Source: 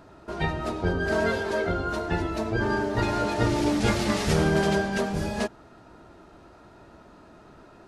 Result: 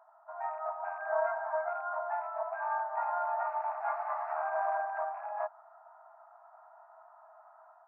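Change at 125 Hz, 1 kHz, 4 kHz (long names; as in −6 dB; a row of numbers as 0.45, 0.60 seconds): below −40 dB, −1.0 dB, below −40 dB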